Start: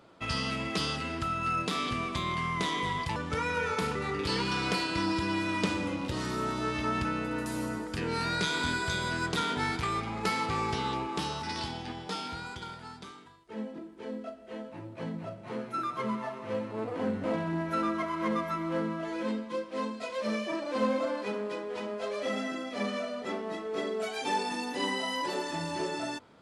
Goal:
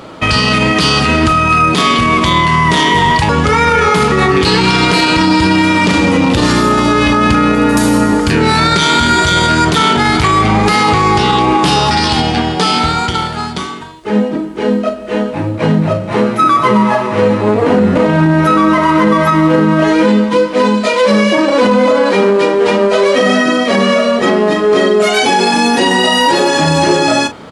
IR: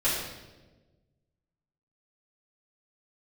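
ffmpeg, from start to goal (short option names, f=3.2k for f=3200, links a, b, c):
-filter_complex "[0:a]asplit=2[a][b];[b]adelay=36,volume=-13dB[c];[a][c]amix=inputs=2:normalize=0,asetrate=42336,aresample=44100,alimiter=level_in=26.5dB:limit=-1dB:release=50:level=0:latency=1,volume=-1dB"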